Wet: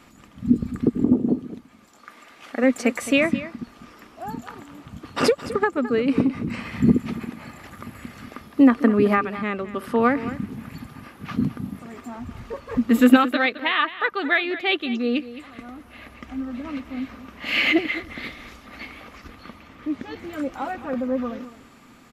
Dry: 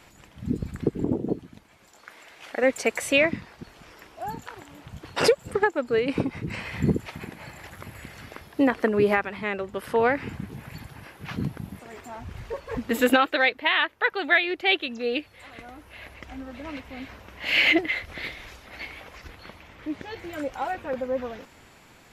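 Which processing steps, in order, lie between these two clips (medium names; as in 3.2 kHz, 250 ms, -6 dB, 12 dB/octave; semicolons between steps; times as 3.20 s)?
small resonant body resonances 240/1200 Hz, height 13 dB, ringing for 45 ms; on a send: delay 215 ms -14.5 dB; on the sum: trim -1 dB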